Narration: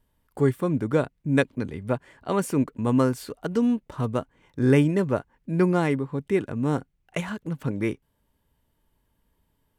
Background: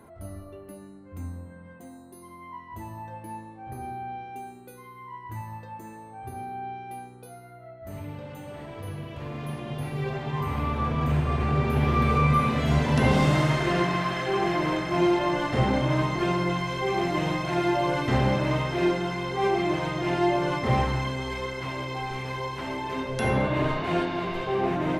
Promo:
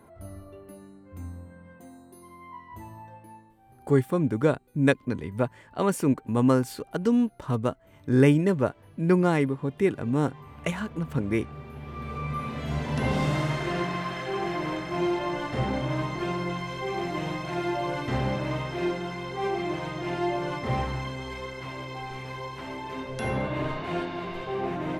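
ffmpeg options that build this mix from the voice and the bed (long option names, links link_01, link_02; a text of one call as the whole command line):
ffmpeg -i stem1.wav -i stem2.wav -filter_complex "[0:a]adelay=3500,volume=0dB[link_01];[1:a]volume=10.5dB,afade=type=out:start_time=2.67:duration=0.95:silence=0.177828,afade=type=in:start_time=11.84:duration=1.41:silence=0.223872[link_02];[link_01][link_02]amix=inputs=2:normalize=0" out.wav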